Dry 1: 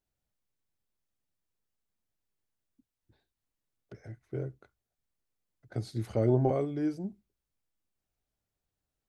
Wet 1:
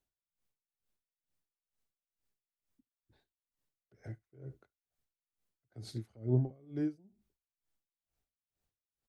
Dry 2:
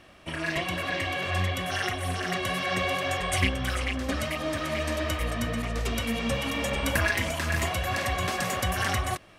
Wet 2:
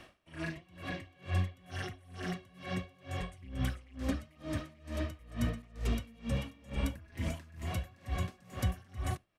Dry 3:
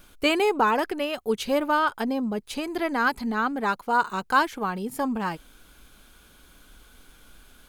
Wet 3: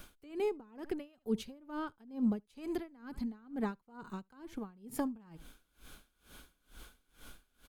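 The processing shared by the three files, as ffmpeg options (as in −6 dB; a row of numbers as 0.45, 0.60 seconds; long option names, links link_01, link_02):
-filter_complex "[0:a]acrossover=split=310[link_01][link_02];[link_02]acompressor=threshold=-39dB:ratio=10[link_03];[link_01][link_03]amix=inputs=2:normalize=0,aecho=1:1:73:0.0708,aeval=exprs='val(0)*pow(10,-27*(0.5-0.5*cos(2*PI*2.2*n/s))/20)':channel_layout=same,volume=1dB"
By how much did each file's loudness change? −4.5, −11.0, −14.5 LU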